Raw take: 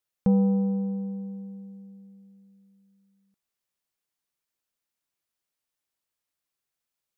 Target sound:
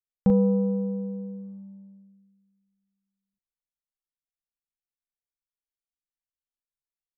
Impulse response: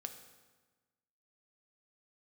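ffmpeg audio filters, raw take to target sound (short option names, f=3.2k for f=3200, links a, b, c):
-filter_complex "[0:a]asplit=2[a][b];[b]adelay=39,volume=-3dB[c];[a][c]amix=inputs=2:normalize=0,anlmdn=0.158,volume=2dB"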